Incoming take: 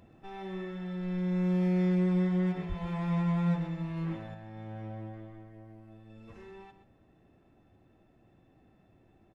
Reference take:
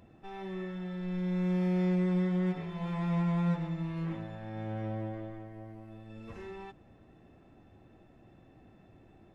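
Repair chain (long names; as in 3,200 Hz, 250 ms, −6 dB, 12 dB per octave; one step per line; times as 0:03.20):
0:02.68–0:02.80: high-pass filter 140 Hz 24 dB per octave
echo removal 127 ms −11.5 dB
0:04.34: level correction +5.5 dB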